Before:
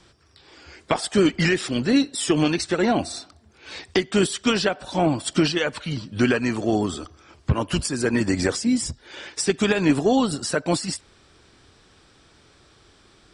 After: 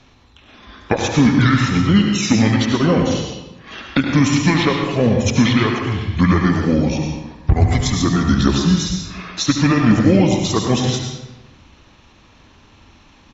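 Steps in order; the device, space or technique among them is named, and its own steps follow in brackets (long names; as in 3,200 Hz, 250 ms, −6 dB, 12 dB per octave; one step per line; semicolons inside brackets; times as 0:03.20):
monster voice (pitch shifter −5.5 semitones; low-shelf EQ 200 Hz +3 dB; single-tap delay 73 ms −11 dB; convolution reverb RT60 1.0 s, pre-delay 92 ms, DRR 2.5 dB)
level +3.5 dB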